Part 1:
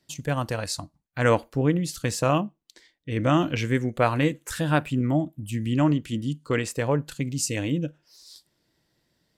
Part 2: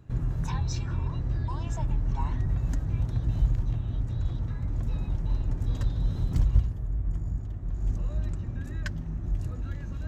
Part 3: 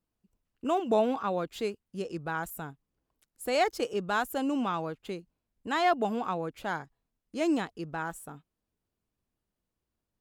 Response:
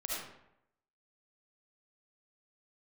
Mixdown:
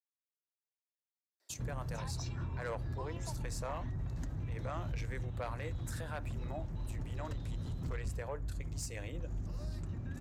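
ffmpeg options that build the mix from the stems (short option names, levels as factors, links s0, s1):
-filter_complex "[0:a]highpass=f=450:w=0.5412,highpass=f=450:w=1.3066,equalizer=f=3000:w=3.2:g=-8.5,adelay=1400,volume=0.596[s0];[1:a]highpass=f=77:p=1,adelay=1500,volume=1.19[s1];[s0][s1]amix=inputs=2:normalize=0,asoftclip=type=tanh:threshold=0.0944,alimiter=level_in=2.51:limit=0.0631:level=0:latency=1:release=444,volume=0.398"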